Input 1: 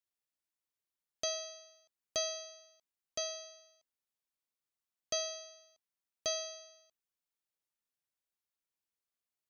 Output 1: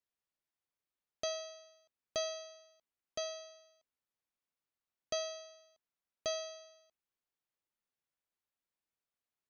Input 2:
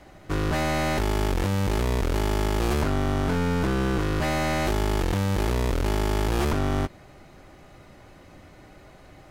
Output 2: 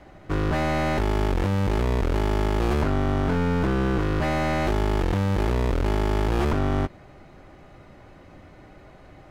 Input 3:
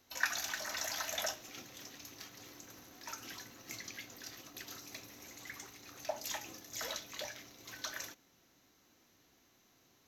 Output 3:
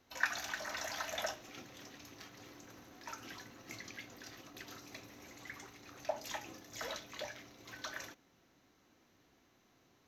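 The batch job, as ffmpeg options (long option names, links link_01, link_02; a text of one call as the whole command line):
ffmpeg -i in.wav -af "highshelf=frequency=4500:gain=-12,volume=1.5dB" out.wav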